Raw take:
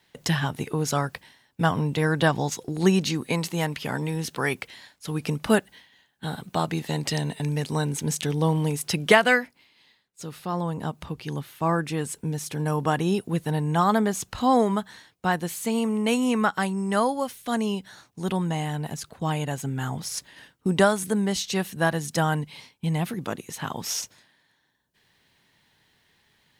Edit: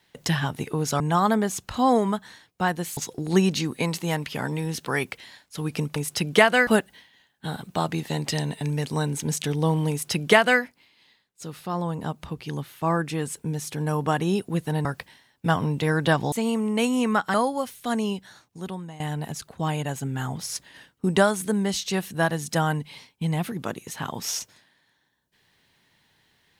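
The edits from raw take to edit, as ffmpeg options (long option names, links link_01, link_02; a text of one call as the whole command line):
ffmpeg -i in.wav -filter_complex "[0:a]asplit=9[link_01][link_02][link_03][link_04][link_05][link_06][link_07][link_08][link_09];[link_01]atrim=end=1.002[link_10];[link_02]atrim=start=13.638:end=15.612[link_11];[link_03]atrim=start=2.468:end=5.462[link_12];[link_04]atrim=start=8.688:end=9.402[link_13];[link_05]atrim=start=5.458:end=13.642[link_14];[link_06]atrim=start=0.998:end=2.472[link_15];[link_07]atrim=start=15.608:end=16.632[link_16];[link_08]atrim=start=16.958:end=18.62,asetpts=PTS-STARTPTS,afade=type=out:start_time=0.772:duration=0.89:silence=0.141254[link_17];[link_09]atrim=start=18.62,asetpts=PTS-STARTPTS,afade=type=in:duration=0.004:curve=hsin:silence=0.141254[link_18];[link_10][link_11]acrossfade=duration=0.004:curve1=hsin:curve2=hsin[link_19];[link_19][link_12]acrossfade=duration=0.004:curve1=hsin:curve2=hsin[link_20];[link_20][link_13]acrossfade=duration=0.004:curve1=hsin:curve2=hsin[link_21];[link_21][link_14]acrossfade=duration=0.004:curve1=hsin:curve2=hsin[link_22];[link_22][link_15]acrossfade=duration=0.004:curve1=hsin:curve2=hsin[link_23];[link_23][link_16]acrossfade=duration=0.004:curve1=hsin:curve2=hsin[link_24];[link_17][link_18]concat=n=2:v=0:a=1[link_25];[link_24][link_25]acrossfade=duration=0.004:curve1=hsin:curve2=hsin" out.wav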